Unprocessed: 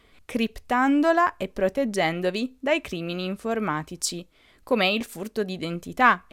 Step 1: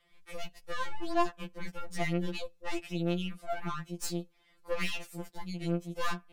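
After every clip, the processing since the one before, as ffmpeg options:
ffmpeg -i in.wav -af "aeval=exprs='(tanh(15.8*val(0)+0.75)-tanh(0.75))/15.8':channel_layout=same,afftfilt=real='re*2.83*eq(mod(b,8),0)':imag='im*2.83*eq(mod(b,8),0)':win_size=2048:overlap=0.75,volume=-3dB" out.wav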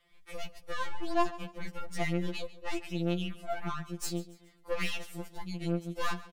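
ffmpeg -i in.wav -af "aecho=1:1:141|282|423:0.126|0.0516|0.0212" out.wav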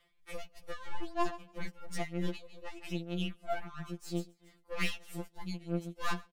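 ffmpeg -i in.wav -af "tremolo=f=3.1:d=0.87,volume=1dB" out.wav

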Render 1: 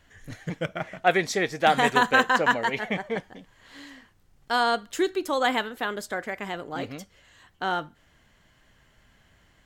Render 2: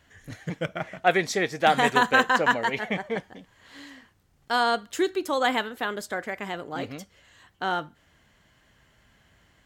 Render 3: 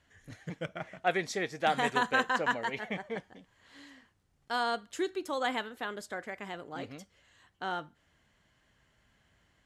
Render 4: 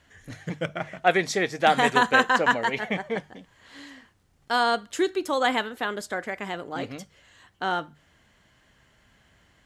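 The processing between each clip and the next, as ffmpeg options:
ffmpeg -i in.wav -af "highpass=42" out.wav
ffmpeg -i in.wav -af "lowpass=frequency=12000:width=0.5412,lowpass=frequency=12000:width=1.3066,volume=-8dB" out.wav
ffmpeg -i in.wav -af "bandreject=frequency=50:width_type=h:width=6,bandreject=frequency=100:width_type=h:width=6,bandreject=frequency=150:width_type=h:width=6,volume=8.5dB" out.wav

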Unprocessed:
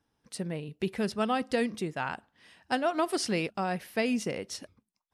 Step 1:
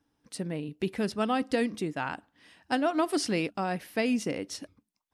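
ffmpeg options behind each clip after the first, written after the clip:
ffmpeg -i in.wav -af "equalizer=frequency=290:width=7.3:gain=10.5" out.wav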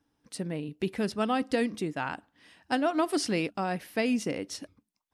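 ffmpeg -i in.wav -af anull out.wav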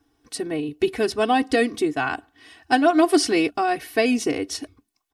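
ffmpeg -i in.wav -af "aecho=1:1:2.7:0.98,volume=6dB" out.wav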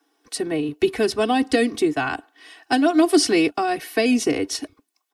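ffmpeg -i in.wav -filter_complex "[0:a]acrossover=split=410|3000[link_01][link_02][link_03];[link_02]acompressor=threshold=-25dB:ratio=3[link_04];[link_01][link_04][link_03]amix=inputs=3:normalize=0,acrossover=split=300|460|6200[link_05][link_06][link_07][link_08];[link_05]aeval=exprs='sgn(val(0))*max(abs(val(0))-0.00158,0)':channel_layout=same[link_09];[link_09][link_06][link_07][link_08]amix=inputs=4:normalize=0,volume=3dB" out.wav

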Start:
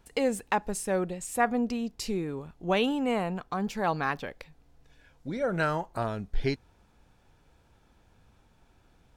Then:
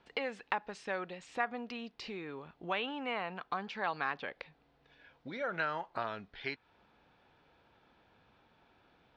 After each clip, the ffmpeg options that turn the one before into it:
ffmpeg -i in.wav -filter_complex "[0:a]lowpass=frequency=4100:width=0.5412,lowpass=frequency=4100:width=1.3066,acrossover=split=970|2700[link_01][link_02][link_03];[link_01]acompressor=threshold=-40dB:ratio=4[link_04];[link_02]acompressor=threshold=-35dB:ratio=4[link_05];[link_03]acompressor=threshold=-50dB:ratio=4[link_06];[link_04][link_05][link_06]amix=inputs=3:normalize=0,highpass=frequency=370:poles=1,volume=1.5dB" out.wav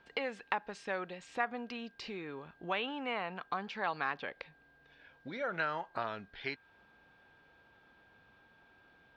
ffmpeg -i in.wav -af "aeval=exprs='val(0)+0.000631*sin(2*PI*1600*n/s)':channel_layout=same" out.wav

